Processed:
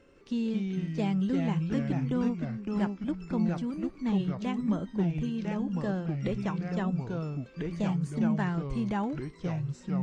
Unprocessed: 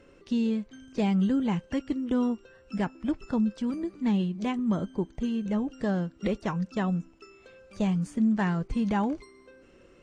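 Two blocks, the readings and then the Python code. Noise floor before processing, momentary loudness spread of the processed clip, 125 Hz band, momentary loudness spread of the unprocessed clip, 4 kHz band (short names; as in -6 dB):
-57 dBFS, 6 LU, +2.0 dB, 7 LU, -3.0 dB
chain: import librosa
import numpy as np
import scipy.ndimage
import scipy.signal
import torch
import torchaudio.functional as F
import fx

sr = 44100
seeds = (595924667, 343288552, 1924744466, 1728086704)

y = fx.echo_pitch(x, sr, ms=161, semitones=-3, count=2, db_per_echo=-3.0)
y = F.gain(torch.from_numpy(y), -4.0).numpy()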